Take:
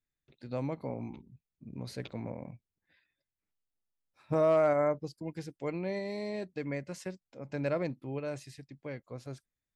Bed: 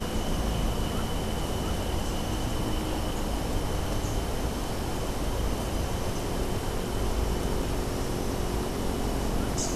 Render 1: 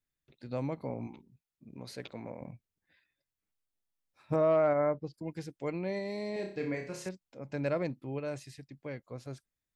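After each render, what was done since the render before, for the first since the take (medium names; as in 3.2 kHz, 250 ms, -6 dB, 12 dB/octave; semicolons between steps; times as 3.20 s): 1.07–2.41 s: bass shelf 180 Hz -11.5 dB; 4.36–5.14 s: distance through air 200 m; 6.33–7.09 s: flutter echo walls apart 5.3 m, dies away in 0.45 s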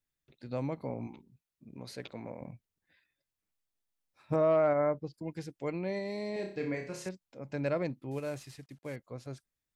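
8.11–8.96 s: CVSD coder 64 kbps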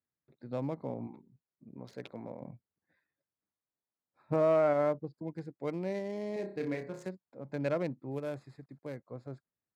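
local Wiener filter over 15 samples; high-pass 110 Hz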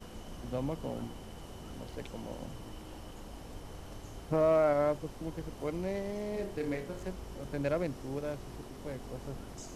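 add bed -17 dB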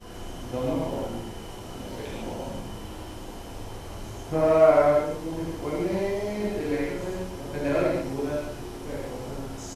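delay 119 ms -9 dB; gated-style reverb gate 170 ms flat, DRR -8 dB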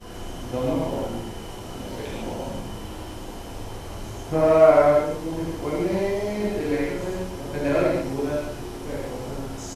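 trim +3 dB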